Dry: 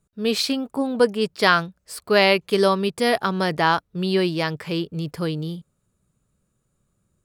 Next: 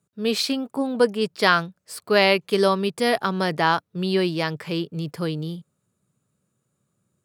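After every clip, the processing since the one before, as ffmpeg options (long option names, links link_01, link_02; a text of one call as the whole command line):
ffmpeg -i in.wav -af "highpass=frequency=100:width=0.5412,highpass=frequency=100:width=1.3066,volume=-1dB" out.wav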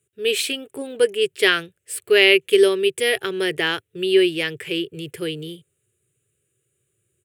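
ffmpeg -i in.wav -af "firequalizer=gain_entry='entry(110,0);entry(210,-20);entry(380,6);entry(620,-11);entry(1000,-17);entry(1700,1);entry(2900,7);entry(4600,-10);entry(8300,7);entry(13000,3)':delay=0.05:min_phase=1,volume=2.5dB" out.wav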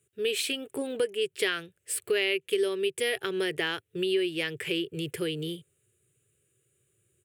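ffmpeg -i in.wav -af "acompressor=threshold=-28dB:ratio=3" out.wav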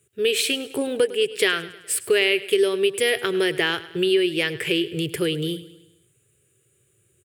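ffmpeg -i in.wav -af "aecho=1:1:104|208|312|416|520:0.141|0.0735|0.0382|0.0199|0.0103,volume=7.5dB" out.wav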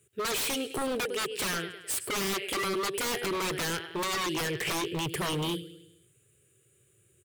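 ffmpeg -i in.wav -af "aeval=exprs='0.0631*(abs(mod(val(0)/0.0631+3,4)-2)-1)':channel_layout=same,volume=-1.5dB" out.wav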